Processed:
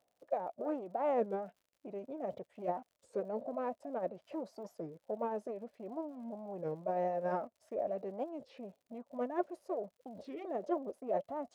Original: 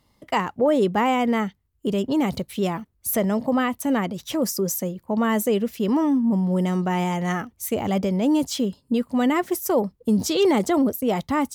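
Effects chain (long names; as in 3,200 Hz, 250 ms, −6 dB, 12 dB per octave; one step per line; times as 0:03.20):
mu-law and A-law mismatch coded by A
reversed playback
upward compression, threshold −27 dBFS
reversed playback
brickwall limiter −20 dBFS, peak gain reduction 8.5 dB
in parallel at −1.5 dB: output level in coarse steps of 19 dB
on the sum: soft clipping −19.5 dBFS, distortion −21 dB
resonant band-pass 710 Hz, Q 8.6
formants moved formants −3 semitones
surface crackle 91 per second −63 dBFS
wow of a warped record 33 1/3 rpm, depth 250 cents
level +3.5 dB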